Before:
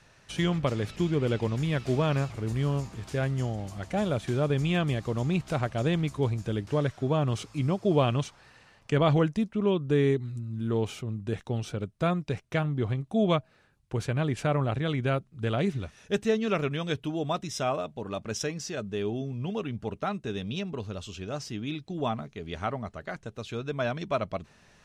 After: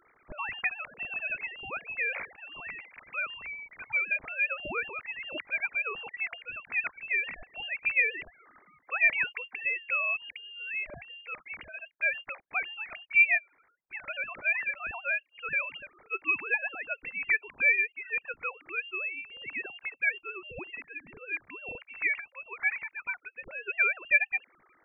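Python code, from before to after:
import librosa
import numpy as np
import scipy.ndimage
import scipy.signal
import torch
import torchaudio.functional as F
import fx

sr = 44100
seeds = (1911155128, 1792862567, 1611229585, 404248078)

y = fx.sine_speech(x, sr)
y = fx.low_shelf_res(y, sr, hz=480.0, db=-11.5, q=1.5)
y = fx.freq_invert(y, sr, carrier_hz=3000)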